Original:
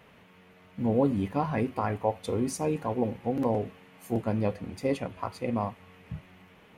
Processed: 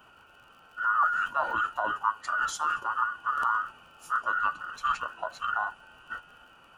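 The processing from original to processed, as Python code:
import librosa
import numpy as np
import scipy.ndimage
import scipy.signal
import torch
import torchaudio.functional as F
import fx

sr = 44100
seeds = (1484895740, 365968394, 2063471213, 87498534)

y = fx.band_invert(x, sr, width_hz=2000)
y = fx.dmg_crackle(y, sr, seeds[0], per_s=36.0, level_db=-48.0)
y = fx.formant_shift(y, sr, semitones=-4)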